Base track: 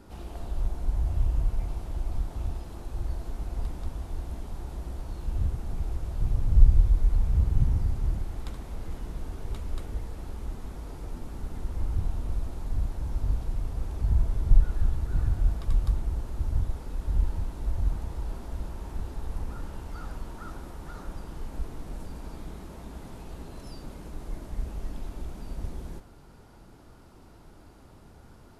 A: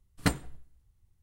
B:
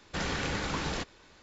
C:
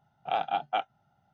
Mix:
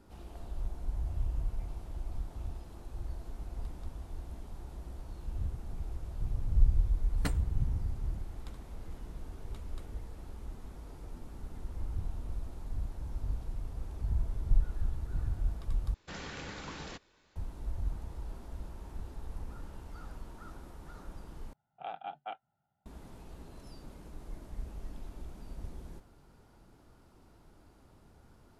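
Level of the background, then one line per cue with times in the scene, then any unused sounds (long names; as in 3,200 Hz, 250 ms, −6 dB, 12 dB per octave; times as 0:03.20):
base track −8 dB
0:06.99: mix in A −9 dB
0:15.94: overwrite with B −10.5 dB
0:21.53: overwrite with C −12.5 dB + low-pass filter 3,300 Hz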